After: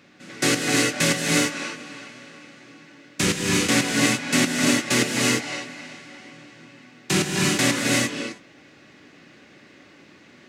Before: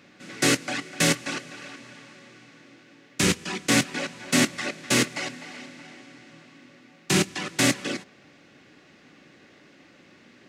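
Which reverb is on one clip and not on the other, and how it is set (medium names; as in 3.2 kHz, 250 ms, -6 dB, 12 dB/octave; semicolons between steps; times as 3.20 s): gated-style reverb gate 380 ms rising, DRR -1.5 dB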